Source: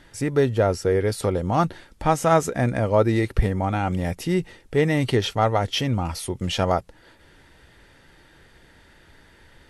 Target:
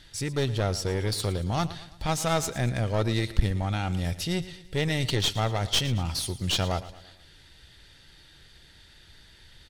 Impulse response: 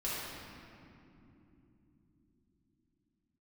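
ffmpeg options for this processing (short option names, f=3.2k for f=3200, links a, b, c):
-af "equalizer=f=250:t=o:w=1:g=-7,equalizer=f=500:t=o:w=1:g=-7,equalizer=f=1k:t=o:w=1:g=-7,equalizer=f=2k:t=o:w=1:g=-4,equalizer=f=4k:t=o:w=1:g=9,aeval=exprs='clip(val(0),-1,0.0398)':c=same,aecho=1:1:113|226|339|452:0.158|0.0761|0.0365|0.0175"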